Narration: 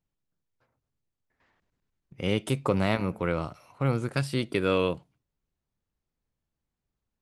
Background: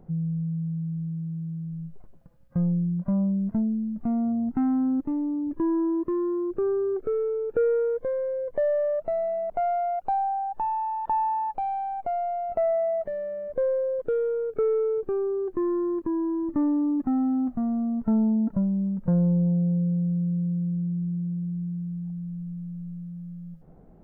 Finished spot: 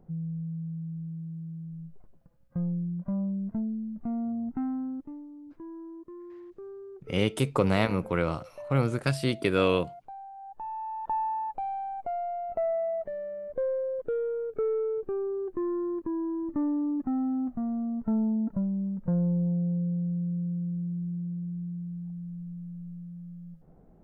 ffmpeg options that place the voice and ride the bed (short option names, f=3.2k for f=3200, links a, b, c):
-filter_complex "[0:a]adelay=4900,volume=1dB[a];[1:a]volume=7.5dB,afade=t=out:st=4.5:d=0.78:silence=0.251189,afade=t=in:st=10.34:d=0.77:silence=0.211349[b];[a][b]amix=inputs=2:normalize=0"